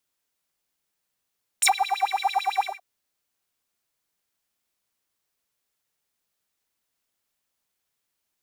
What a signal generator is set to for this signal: synth patch with filter wobble G5, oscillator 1 square, oscillator 2 saw, sub -6.5 dB, filter highpass, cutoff 1000 Hz, Q 10, filter envelope 2.5 oct, filter decay 0.07 s, filter sustain 30%, attack 13 ms, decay 0.07 s, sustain -22.5 dB, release 0.17 s, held 1.01 s, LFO 9 Hz, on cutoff 1.2 oct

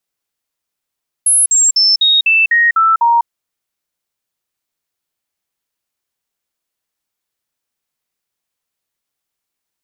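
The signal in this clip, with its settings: stepped sine 10600 Hz down, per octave 2, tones 8, 0.20 s, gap 0.05 s -7.5 dBFS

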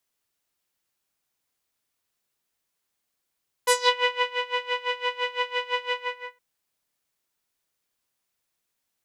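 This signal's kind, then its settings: synth patch with tremolo B5, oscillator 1 saw, sub -5.5 dB, noise -24.5 dB, filter lowpass, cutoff 2100 Hz, Q 2.9, filter envelope 2.5 oct, filter decay 0.26 s, filter sustain 15%, attack 7.5 ms, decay 0.64 s, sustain -8.5 dB, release 0.47 s, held 2.25 s, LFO 5.9 Hz, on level 19.5 dB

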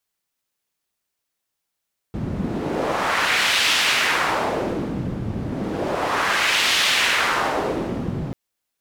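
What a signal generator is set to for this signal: wind-like swept noise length 6.19 s, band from 160 Hz, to 3000 Hz, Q 1.3, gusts 2, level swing 8 dB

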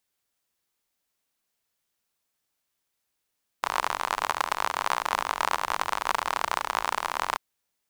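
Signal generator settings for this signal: rain from filtered ticks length 3.74 s, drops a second 54, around 1000 Hz, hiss -22 dB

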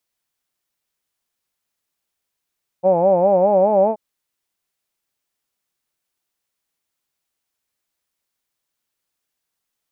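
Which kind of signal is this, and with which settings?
formant-synthesis vowel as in hawed, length 1.13 s, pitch 176 Hz, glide +3 st, vibrato 4.9 Hz, vibrato depth 1.3 st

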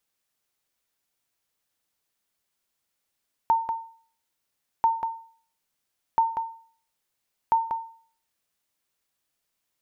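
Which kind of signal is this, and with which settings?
sonar ping 908 Hz, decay 0.48 s, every 1.34 s, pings 4, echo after 0.19 s, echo -6.5 dB -13.5 dBFS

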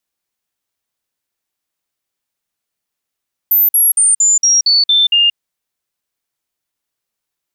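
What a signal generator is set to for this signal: stepped sine 14200 Hz down, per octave 3, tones 8, 0.18 s, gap 0.05 s -7.5 dBFS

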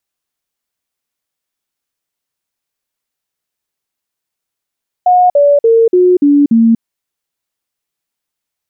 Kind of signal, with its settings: stepped sine 724 Hz down, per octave 3, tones 6, 0.24 s, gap 0.05 s -4.5 dBFS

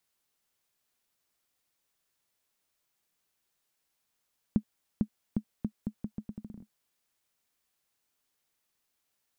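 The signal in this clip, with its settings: bouncing ball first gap 0.45 s, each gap 0.79, 213 Hz, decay 74 ms -14 dBFS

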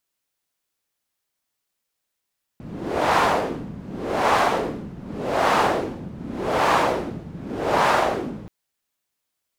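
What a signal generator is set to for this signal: wind-like swept noise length 5.88 s, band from 170 Hz, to 930 Hz, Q 1.5, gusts 5, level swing 18.5 dB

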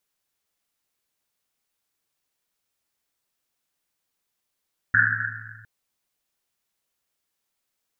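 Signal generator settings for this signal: Risset drum length 0.71 s, pitch 110 Hz, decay 2.40 s, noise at 1600 Hz, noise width 360 Hz, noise 80%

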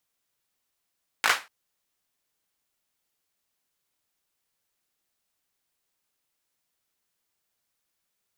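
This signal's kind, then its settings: hand clap length 0.24 s, apart 18 ms, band 1500 Hz, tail 0.26 s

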